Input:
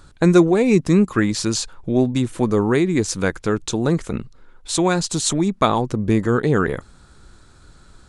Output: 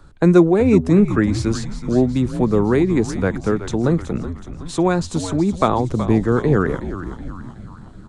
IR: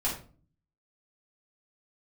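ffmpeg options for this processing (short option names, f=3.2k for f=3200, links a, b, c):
-filter_complex "[0:a]highshelf=f=2.2k:g=-10.5,acrossover=split=140|380|2200[a][b][c][d];[d]alimiter=limit=-22.5dB:level=0:latency=1:release=311[e];[a][b][c][e]amix=inputs=4:normalize=0,asplit=7[f][g][h][i][j][k][l];[g]adelay=373,afreqshift=-85,volume=-11dB[m];[h]adelay=746,afreqshift=-170,volume=-16dB[n];[i]adelay=1119,afreqshift=-255,volume=-21.1dB[o];[j]adelay=1492,afreqshift=-340,volume=-26.1dB[p];[k]adelay=1865,afreqshift=-425,volume=-31.1dB[q];[l]adelay=2238,afreqshift=-510,volume=-36.2dB[r];[f][m][n][o][p][q][r]amix=inputs=7:normalize=0,volume=1.5dB"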